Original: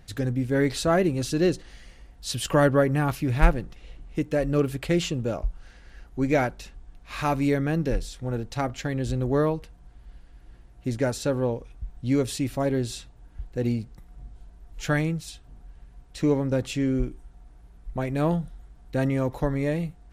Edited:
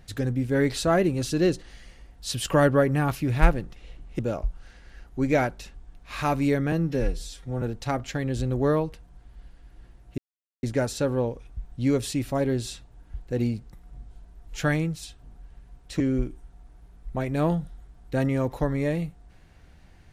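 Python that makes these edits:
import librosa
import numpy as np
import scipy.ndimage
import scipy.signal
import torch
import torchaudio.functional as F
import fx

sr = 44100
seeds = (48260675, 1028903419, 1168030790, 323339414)

y = fx.edit(x, sr, fx.cut(start_s=4.19, length_s=1.0),
    fx.stretch_span(start_s=7.72, length_s=0.6, factor=1.5),
    fx.insert_silence(at_s=10.88, length_s=0.45),
    fx.cut(start_s=16.25, length_s=0.56), tone=tone)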